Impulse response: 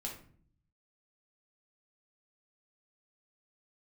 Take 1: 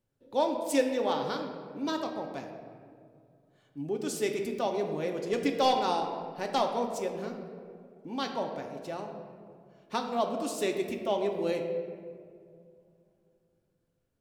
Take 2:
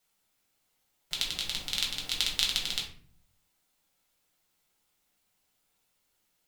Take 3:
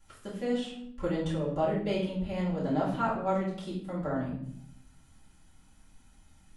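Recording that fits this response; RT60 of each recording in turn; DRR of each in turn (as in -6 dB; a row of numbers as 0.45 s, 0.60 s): 2; 2.3 s, 0.50 s, 0.70 s; 2.5 dB, -2.0 dB, -10.5 dB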